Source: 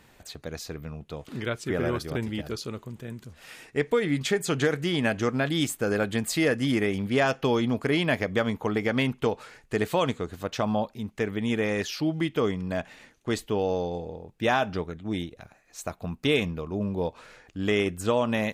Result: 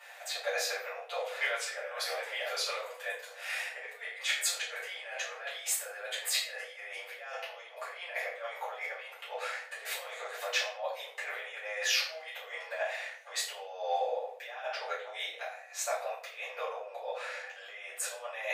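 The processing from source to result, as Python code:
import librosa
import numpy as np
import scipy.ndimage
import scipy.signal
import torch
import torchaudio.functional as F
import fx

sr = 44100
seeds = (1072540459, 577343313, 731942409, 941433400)

y = fx.over_compress(x, sr, threshold_db=-32.0, ratio=-0.5)
y = scipy.signal.sosfilt(scipy.signal.cheby1(6, 6, 490.0, 'highpass', fs=sr, output='sos'), y)
y = fx.room_shoebox(y, sr, seeds[0], volume_m3=63.0, walls='mixed', distance_m=2.4)
y = F.gain(torch.from_numpy(y), -4.5).numpy()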